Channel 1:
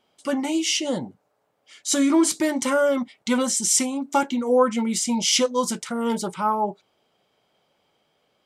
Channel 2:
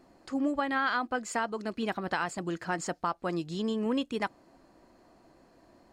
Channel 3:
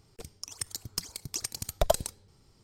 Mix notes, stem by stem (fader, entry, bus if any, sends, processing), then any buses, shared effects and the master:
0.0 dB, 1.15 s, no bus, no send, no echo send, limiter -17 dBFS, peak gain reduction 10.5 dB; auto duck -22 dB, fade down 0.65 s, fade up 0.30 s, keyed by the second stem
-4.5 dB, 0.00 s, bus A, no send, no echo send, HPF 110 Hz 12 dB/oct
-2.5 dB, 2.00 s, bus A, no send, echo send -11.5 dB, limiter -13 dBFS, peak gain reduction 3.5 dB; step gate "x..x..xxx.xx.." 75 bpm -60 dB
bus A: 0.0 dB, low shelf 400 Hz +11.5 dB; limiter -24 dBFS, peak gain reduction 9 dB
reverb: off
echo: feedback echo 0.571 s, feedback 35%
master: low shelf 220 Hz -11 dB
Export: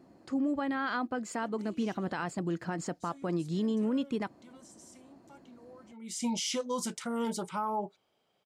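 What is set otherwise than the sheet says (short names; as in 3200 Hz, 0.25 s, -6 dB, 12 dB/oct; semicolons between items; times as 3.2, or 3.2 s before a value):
stem 1 0.0 dB -> -7.5 dB; stem 3: muted; master: missing low shelf 220 Hz -11 dB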